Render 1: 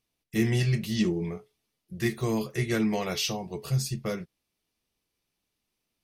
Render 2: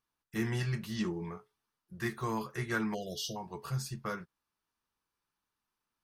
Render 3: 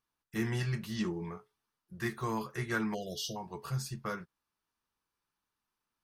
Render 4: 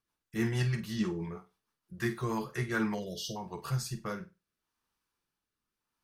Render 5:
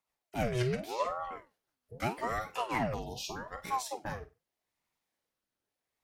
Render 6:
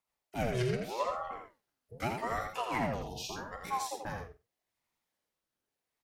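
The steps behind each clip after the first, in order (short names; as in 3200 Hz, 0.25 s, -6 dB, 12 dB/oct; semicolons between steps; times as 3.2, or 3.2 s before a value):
spectral delete 2.94–3.36, 730–2800 Hz; band shelf 1200 Hz +12 dB 1.2 oct; gain -8.5 dB
nothing audible
rotary speaker horn 6.3 Hz, later 0.8 Hz, at 2.19; flutter echo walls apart 8.3 m, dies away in 0.25 s; gain +3.5 dB
ring modulator with a swept carrier 610 Hz, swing 60%, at 0.82 Hz; gain +1.5 dB
echo 83 ms -5.5 dB; gain -1.5 dB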